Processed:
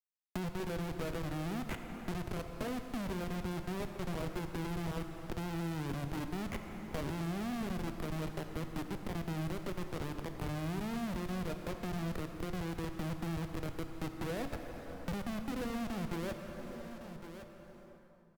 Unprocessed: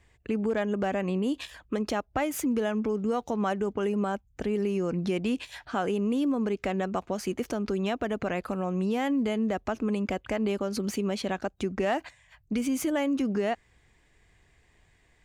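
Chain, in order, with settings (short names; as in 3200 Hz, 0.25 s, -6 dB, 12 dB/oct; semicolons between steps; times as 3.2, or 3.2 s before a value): low-pass opened by the level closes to 830 Hz, open at -27.5 dBFS; spectral gate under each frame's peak -15 dB strong; HPF 200 Hz 12 dB/oct; high shelf 3200 Hz -11.5 dB; reverse; compressor 5:1, threshold -42 dBFS, peak gain reduction 15.5 dB; reverse; added harmonics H 2 -6 dB, 3 -41 dB, 6 -44 dB, 8 -32 dB, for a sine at -29 dBFS; Schmitt trigger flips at -42.5 dBFS; varispeed -17%; in parallel at -7 dB: sample-rate reducer 12000 Hz; on the sum: echo 1.11 s -23 dB; plate-style reverb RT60 2.5 s, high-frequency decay 0.7×, DRR 6 dB; three-band squash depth 70%; gain +2.5 dB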